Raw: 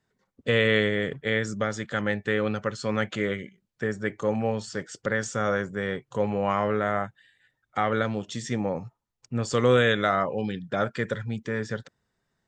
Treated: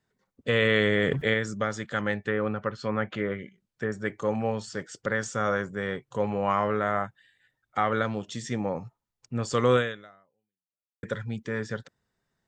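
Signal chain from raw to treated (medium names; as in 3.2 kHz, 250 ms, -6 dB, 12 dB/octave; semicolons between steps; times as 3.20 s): 2.15–3.92 s: low-pass that closes with the level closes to 1.8 kHz, closed at -23 dBFS; 9.76–11.03 s: fade out exponential; dynamic bell 1.1 kHz, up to +4 dB, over -39 dBFS, Q 1.8; 0.62–1.34 s: level flattener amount 70%; trim -2 dB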